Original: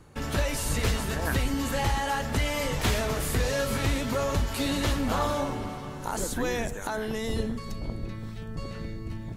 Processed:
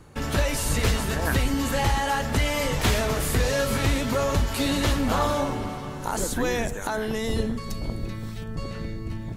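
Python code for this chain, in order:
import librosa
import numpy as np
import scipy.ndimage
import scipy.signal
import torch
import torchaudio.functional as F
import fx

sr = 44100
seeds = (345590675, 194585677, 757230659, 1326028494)

y = fx.high_shelf(x, sr, hz=5200.0, db=7.5, at=(7.7, 8.44))
y = F.gain(torch.from_numpy(y), 3.5).numpy()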